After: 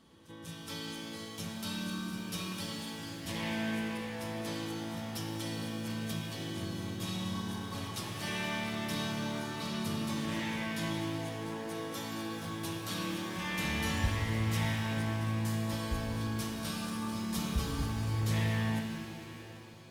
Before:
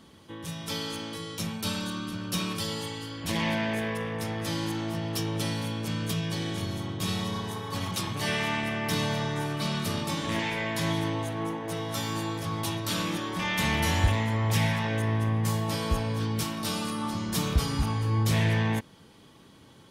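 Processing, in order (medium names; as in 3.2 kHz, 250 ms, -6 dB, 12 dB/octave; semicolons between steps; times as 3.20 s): on a send: reverse echo 193 ms -15 dB; on the sum: pitch-shifted reverb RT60 3.3 s, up +7 st, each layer -8 dB, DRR 3 dB; trim -9 dB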